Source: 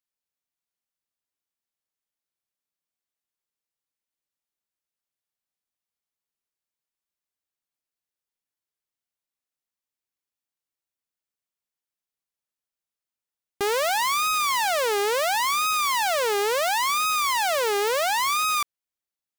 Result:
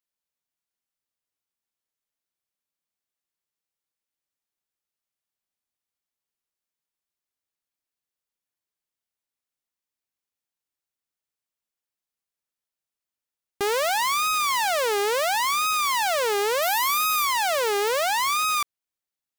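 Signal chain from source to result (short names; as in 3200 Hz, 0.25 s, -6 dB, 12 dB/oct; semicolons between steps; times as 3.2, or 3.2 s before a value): 16.62–17.25 bell 13000 Hz +13 dB 0.25 oct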